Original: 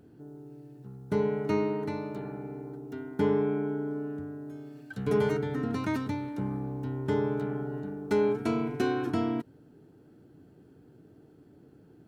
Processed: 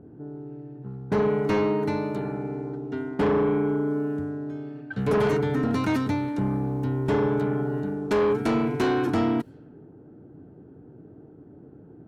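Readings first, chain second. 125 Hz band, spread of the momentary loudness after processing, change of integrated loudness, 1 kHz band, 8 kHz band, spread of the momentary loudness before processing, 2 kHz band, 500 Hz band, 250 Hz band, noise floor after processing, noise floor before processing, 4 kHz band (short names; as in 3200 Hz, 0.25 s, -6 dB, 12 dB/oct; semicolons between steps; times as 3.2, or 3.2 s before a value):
+6.0 dB, 13 LU, +5.5 dB, +7.0 dB, n/a, 17 LU, +6.5 dB, +5.0 dB, +5.5 dB, -49 dBFS, -57 dBFS, +6.5 dB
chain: added harmonics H 5 -10 dB, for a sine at -15 dBFS; low-pass opened by the level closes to 800 Hz, open at -24.5 dBFS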